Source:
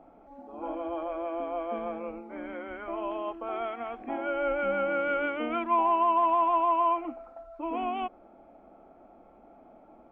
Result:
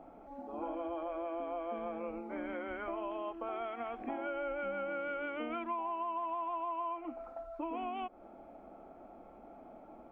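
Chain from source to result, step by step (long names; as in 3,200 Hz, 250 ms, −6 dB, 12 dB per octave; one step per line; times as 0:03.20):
downward compressor 6 to 1, threshold −37 dBFS, peak gain reduction 15 dB
level +1 dB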